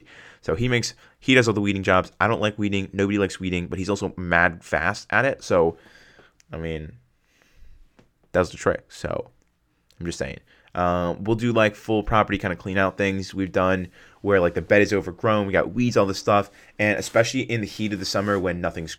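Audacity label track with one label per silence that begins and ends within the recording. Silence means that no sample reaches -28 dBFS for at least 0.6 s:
5.710000	6.530000	silence
6.860000	8.340000	silence
9.210000	10.010000	silence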